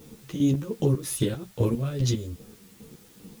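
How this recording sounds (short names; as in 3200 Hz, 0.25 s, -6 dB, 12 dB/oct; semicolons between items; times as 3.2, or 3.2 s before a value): chopped level 2.5 Hz, depth 65%, duty 35%; a quantiser's noise floor 10-bit, dither triangular; a shimmering, thickened sound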